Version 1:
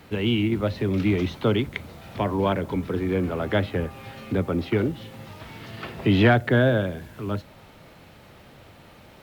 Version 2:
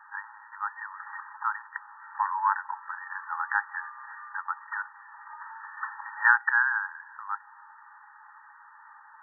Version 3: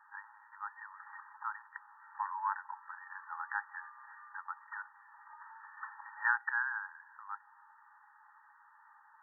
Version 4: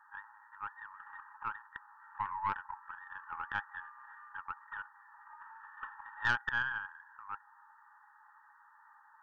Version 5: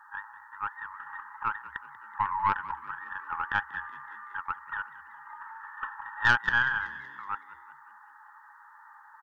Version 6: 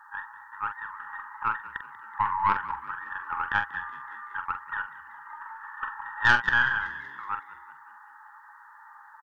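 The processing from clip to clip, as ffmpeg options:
-af "afftfilt=real='re*between(b*sr/4096,810,1900)':imag='im*between(b*sr/4096,810,1900)':win_size=4096:overlap=0.75,volume=5.5dB"
-af "equalizer=f=1.5k:t=o:w=2.5:g=-5,volume=-5.5dB"
-af "aeval=exprs='(tanh(14.1*val(0)+0.5)-tanh(0.5))/14.1':c=same,volume=2.5dB"
-filter_complex "[0:a]asplit=6[a][b][c][d][e][f];[b]adelay=188,afreqshift=70,volume=-17dB[g];[c]adelay=376,afreqshift=140,volume=-22.4dB[h];[d]adelay=564,afreqshift=210,volume=-27.7dB[i];[e]adelay=752,afreqshift=280,volume=-33.1dB[j];[f]adelay=940,afreqshift=350,volume=-38.4dB[k];[a][g][h][i][j][k]amix=inputs=6:normalize=0,volume=8.5dB"
-filter_complex "[0:a]asplit=2[a][b];[b]adelay=45,volume=-8dB[c];[a][c]amix=inputs=2:normalize=0,volume=2dB"

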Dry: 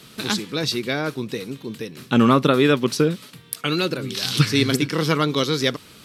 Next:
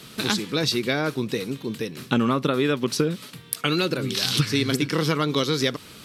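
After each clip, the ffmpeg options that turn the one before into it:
-af "acompressor=threshold=-20dB:ratio=6,volume=2dB"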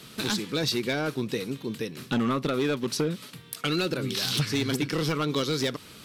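-af "asoftclip=type=hard:threshold=-17dB,volume=-3dB"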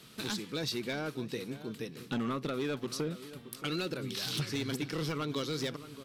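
-filter_complex "[0:a]asplit=2[a][b];[b]adelay=623,lowpass=f=1.8k:p=1,volume=-14dB,asplit=2[c][d];[d]adelay=623,lowpass=f=1.8k:p=1,volume=0.48,asplit=2[e][f];[f]adelay=623,lowpass=f=1.8k:p=1,volume=0.48,asplit=2[g][h];[h]adelay=623,lowpass=f=1.8k:p=1,volume=0.48,asplit=2[i][j];[j]adelay=623,lowpass=f=1.8k:p=1,volume=0.48[k];[a][c][e][g][i][k]amix=inputs=6:normalize=0,volume=-8dB"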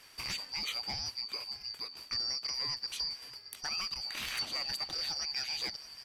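-af "afftfilt=real='real(if(lt(b,272),68*(eq(floor(b/68),0)*1+eq(floor(b/68),1)*2+eq(floor(b/68),2)*3+eq(floor(b/68),3)*0)+mod(b,68),b),0)':imag='imag(if(lt(b,272),68*(eq(floor(b/68),0)*1+eq(floor(b/68),1)*2+eq(floor(b/68),2)*3+eq(floor(b/68),3)*0)+mod(b,68),b),0)':win_size=2048:overlap=0.75,volume=-2dB"

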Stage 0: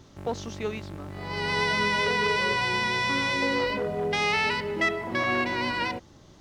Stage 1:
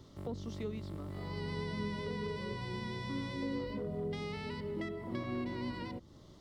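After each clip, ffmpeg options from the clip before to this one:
-filter_complex "[0:a]equalizer=f=800:t=o:w=0.33:g=-6,equalizer=f=1.6k:t=o:w=0.33:g=-9,equalizer=f=2.5k:t=o:w=0.33:g=-9,equalizer=f=6.3k:t=o:w=0.33:g=-7,acrossover=split=330[a][b];[b]acompressor=threshold=-43dB:ratio=4[c];[a][c]amix=inputs=2:normalize=0,volume=-3.5dB"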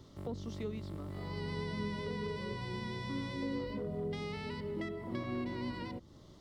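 -af anull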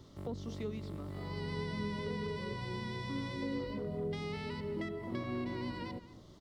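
-af "aecho=1:1:222:0.168"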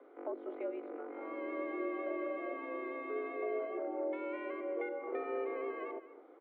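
-af "highpass=f=160:t=q:w=0.5412,highpass=f=160:t=q:w=1.307,lowpass=f=2.2k:t=q:w=0.5176,lowpass=f=2.2k:t=q:w=0.7071,lowpass=f=2.2k:t=q:w=1.932,afreqshift=150,volume=1dB"

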